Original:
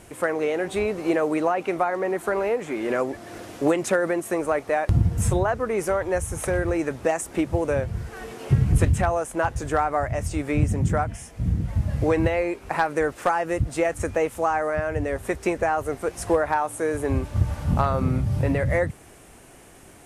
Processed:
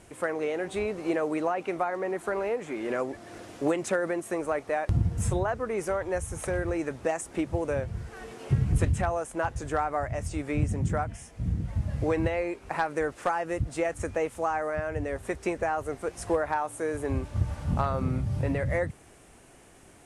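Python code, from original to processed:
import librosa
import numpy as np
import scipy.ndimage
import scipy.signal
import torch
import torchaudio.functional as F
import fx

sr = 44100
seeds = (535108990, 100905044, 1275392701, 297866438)

y = scipy.signal.sosfilt(scipy.signal.butter(4, 11000.0, 'lowpass', fs=sr, output='sos'), x)
y = F.gain(torch.from_numpy(y), -5.5).numpy()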